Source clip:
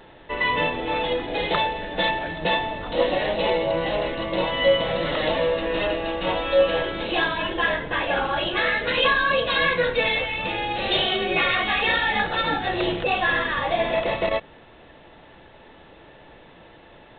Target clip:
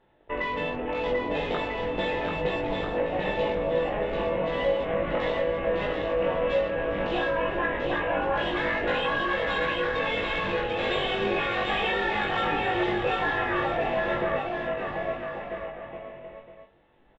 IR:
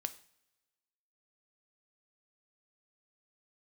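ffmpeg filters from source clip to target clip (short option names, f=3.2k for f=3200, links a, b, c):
-filter_complex "[0:a]afwtdn=0.0251,aemphasis=mode=reproduction:type=75kf,acompressor=threshold=-26dB:ratio=6,asplit=2[a][b];[b]adelay=20,volume=-2dB[c];[a][c]amix=inputs=2:normalize=0,aecho=1:1:740|1295|1711|2023|2258:0.631|0.398|0.251|0.158|0.1,asplit=2[d][e];[1:a]atrim=start_sample=2205,adelay=48[f];[e][f]afir=irnorm=-1:irlink=0,volume=-11dB[g];[d][g]amix=inputs=2:normalize=0,volume=-2dB"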